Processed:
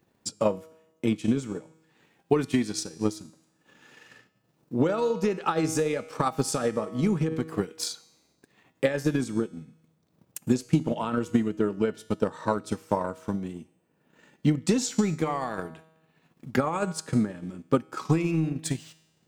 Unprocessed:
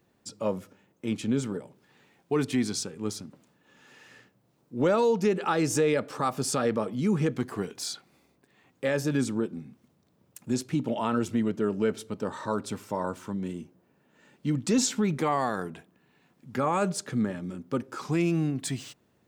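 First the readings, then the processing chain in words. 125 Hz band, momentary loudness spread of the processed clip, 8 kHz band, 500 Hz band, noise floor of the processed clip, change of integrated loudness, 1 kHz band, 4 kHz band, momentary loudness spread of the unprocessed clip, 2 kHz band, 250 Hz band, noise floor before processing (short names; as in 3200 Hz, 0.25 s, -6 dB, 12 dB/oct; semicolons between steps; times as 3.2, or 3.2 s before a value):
+2.0 dB, 10 LU, -1.0 dB, +0.5 dB, -70 dBFS, +1.0 dB, 0.0 dB, -0.5 dB, 12 LU, -0.5 dB, +1.5 dB, -68 dBFS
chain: resonator 160 Hz, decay 0.95 s, harmonics all, mix 70%; limiter -28 dBFS, peak gain reduction 6 dB; transient shaper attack +10 dB, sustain -5 dB; gain +8.5 dB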